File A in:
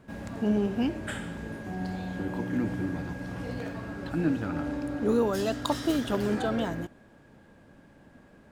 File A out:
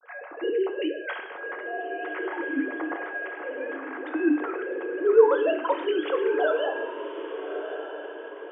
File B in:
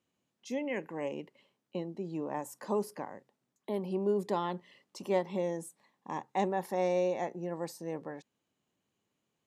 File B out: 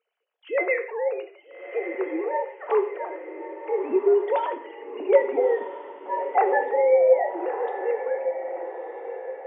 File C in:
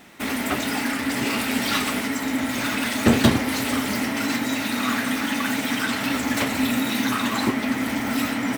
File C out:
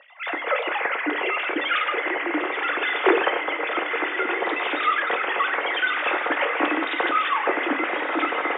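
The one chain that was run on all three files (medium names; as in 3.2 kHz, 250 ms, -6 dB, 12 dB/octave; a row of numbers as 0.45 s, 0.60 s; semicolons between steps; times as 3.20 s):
formants replaced by sine waves; high-pass 380 Hz 12 dB/octave; distance through air 150 m; echo that smears into a reverb 1261 ms, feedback 44%, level -9.5 dB; gated-style reverb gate 200 ms falling, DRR 6 dB; peak normalisation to -6 dBFS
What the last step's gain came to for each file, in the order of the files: +5.5 dB, +12.5 dB, 0.0 dB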